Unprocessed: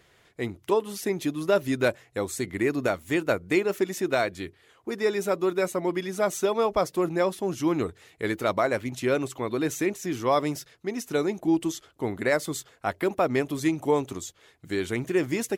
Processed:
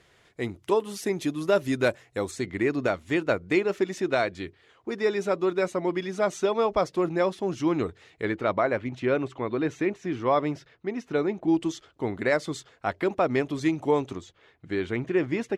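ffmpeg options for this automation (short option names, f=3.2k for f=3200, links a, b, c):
-af "asetnsamples=n=441:p=0,asendcmd='2.31 lowpass f 5400;8.25 lowpass f 2800;11.48 lowpass f 5300;14.15 lowpass f 3000',lowpass=10k"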